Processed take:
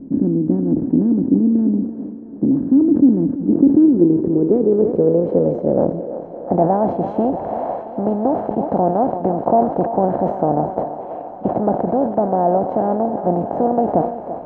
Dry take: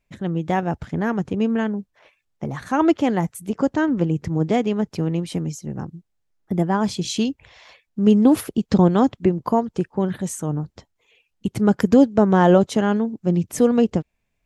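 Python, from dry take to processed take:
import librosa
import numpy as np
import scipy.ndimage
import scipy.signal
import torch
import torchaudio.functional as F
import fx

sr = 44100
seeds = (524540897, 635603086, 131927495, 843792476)

p1 = fx.bin_compress(x, sr, power=0.4)
p2 = fx.rider(p1, sr, range_db=4, speed_s=0.5)
p3 = fx.filter_sweep_lowpass(p2, sr, from_hz=280.0, to_hz=720.0, start_s=3.33, end_s=6.46, q=5.4)
p4 = p3 + fx.echo_thinned(p3, sr, ms=336, feedback_pct=79, hz=360.0, wet_db=-11, dry=0)
p5 = fx.sustainer(p4, sr, db_per_s=94.0)
y = p5 * 10.0 ** (-9.0 / 20.0)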